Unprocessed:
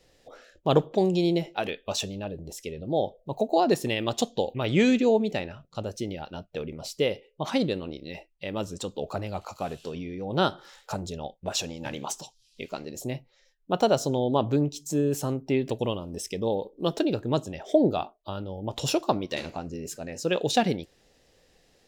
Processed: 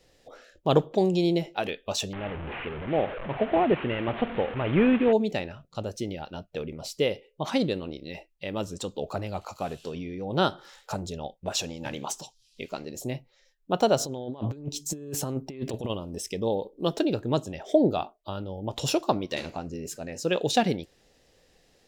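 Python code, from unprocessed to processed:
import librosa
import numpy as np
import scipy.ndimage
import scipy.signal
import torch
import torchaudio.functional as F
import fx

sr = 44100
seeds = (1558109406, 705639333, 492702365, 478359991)

y = fx.delta_mod(x, sr, bps=16000, step_db=-29.5, at=(2.13, 5.13))
y = fx.over_compress(y, sr, threshold_db=-30.0, ratio=-0.5, at=(13.98, 15.89), fade=0.02)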